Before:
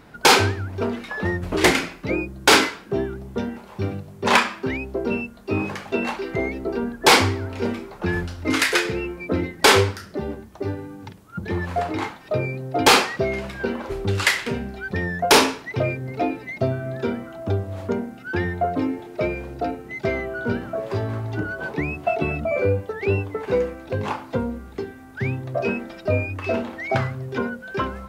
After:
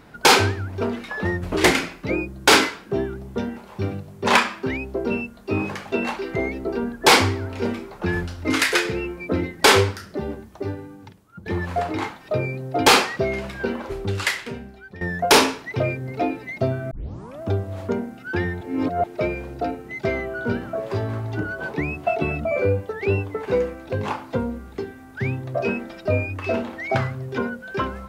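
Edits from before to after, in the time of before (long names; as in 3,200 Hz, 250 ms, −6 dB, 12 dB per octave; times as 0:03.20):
0:10.50–0:11.46: fade out, to −12 dB
0:13.72–0:15.01: fade out, to −16 dB
0:16.91: tape start 0.51 s
0:18.61–0:19.04: reverse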